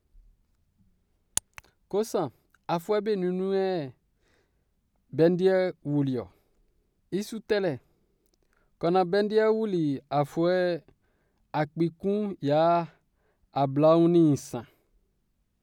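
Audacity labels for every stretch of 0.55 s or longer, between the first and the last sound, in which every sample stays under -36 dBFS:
3.880000	5.130000	silence
6.230000	7.130000	silence
7.760000	8.820000	silence
10.780000	11.540000	silence
12.860000	13.560000	silence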